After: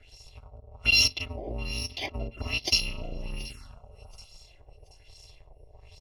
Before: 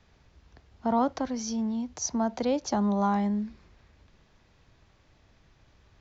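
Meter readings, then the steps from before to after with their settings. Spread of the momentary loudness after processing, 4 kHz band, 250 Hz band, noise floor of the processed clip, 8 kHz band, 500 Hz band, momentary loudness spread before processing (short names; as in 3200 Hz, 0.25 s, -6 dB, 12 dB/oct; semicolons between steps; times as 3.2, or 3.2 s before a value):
19 LU, +17.5 dB, -16.5 dB, -56 dBFS, n/a, -10.0 dB, 7 LU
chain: FFT order left unsorted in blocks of 256 samples; LFO low-pass sine 1.2 Hz 510–5700 Hz; in parallel at -1.5 dB: compressor, threshold -49 dBFS, peak gain reduction 24.5 dB; on the sum: feedback echo 0.729 s, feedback 33%, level -20.5 dB; envelope phaser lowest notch 170 Hz, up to 1500 Hz, full sweep at -37.5 dBFS; gain +7 dB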